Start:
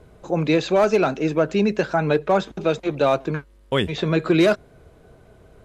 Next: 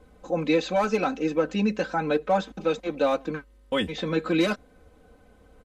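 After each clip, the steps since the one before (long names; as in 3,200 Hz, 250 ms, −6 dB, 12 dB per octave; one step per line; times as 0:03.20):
comb filter 3.9 ms, depth 94%
level −7 dB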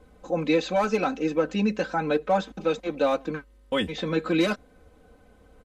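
no processing that can be heard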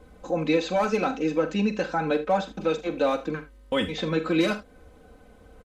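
in parallel at −2 dB: downward compressor, threshold −33 dBFS, peak gain reduction 15 dB
on the sum: ambience of single reflections 44 ms −12 dB, 77 ms −16 dB
level −2 dB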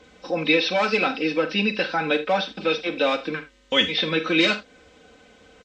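hearing-aid frequency compression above 3,600 Hz 1.5 to 1
meter weighting curve D
level +1.5 dB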